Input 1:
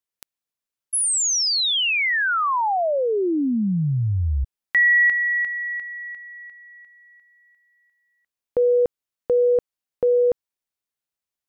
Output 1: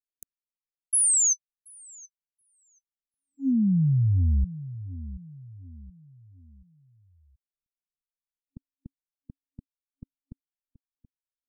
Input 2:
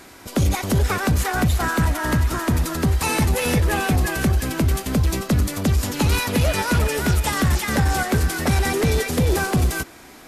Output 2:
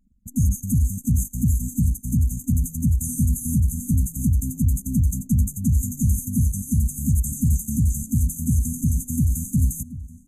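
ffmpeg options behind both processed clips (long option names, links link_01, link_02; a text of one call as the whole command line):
ffmpeg -i in.wav -filter_complex "[0:a]afftfilt=real='re*(1-between(b*sr/4096,270,6100))':imag='im*(1-between(b*sr/4096,270,6100))':win_size=4096:overlap=0.75,acrossover=split=410|1200[link_01][link_02][link_03];[link_02]acompressor=threshold=-52dB:ratio=6:attack=1.7:release=181:knee=6[link_04];[link_01][link_04][link_03]amix=inputs=3:normalize=0,anlmdn=1,asplit=2[link_05][link_06];[link_06]adelay=728,lowpass=frequency=2200:poles=1,volume=-15dB,asplit=2[link_07][link_08];[link_08]adelay=728,lowpass=frequency=2200:poles=1,volume=0.4,asplit=2[link_09][link_10];[link_10]adelay=728,lowpass=frequency=2200:poles=1,volume=0.4,asplit=2[link_11][link_12];[link_12]adelay=728,lowpass=frequency=2200:poles=1,volume=0.4[link_13];[link_05][link_07][link_09][link_11][link_13]amix=inputs=5:normalize=0" out.wav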